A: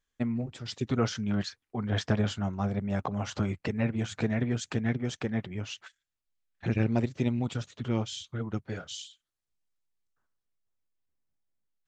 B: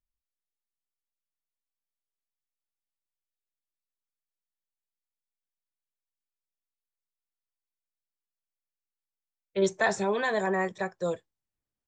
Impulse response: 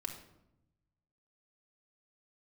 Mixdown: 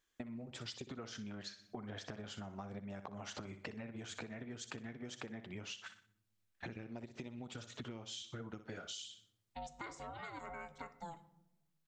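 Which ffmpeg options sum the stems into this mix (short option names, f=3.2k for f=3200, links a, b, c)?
-filter_complex "[0:a]acompressor=threshold=-31dB:ratio=6,volume=2dB,asplit=3[a][b][c];[b]volume=-18dB[d];[c]volume=-12.5dB[e];[1:a]acontrast=74,aeval=exprs='val(0)*sin(2*PI*340*n/s)':c=same,volume=-18dB,asplit=2[f][g];[g]volume=-8dB[h];[2:a]atrim=start_sample=2205[i];[d][h]amix=inputs=2:normalize=0[j];[j][i]afir=irnorm=-1:irlink=0[k];[e]aecho=0:1:61|122|183|244|305:1|0.35|0.122|0.0429|0.015[l];[a][f][k][l]amix=inputs=4:normalize=0,lowshelf=f=170:g=-10.5,acompressor=threshold=-43dB:ratio=10"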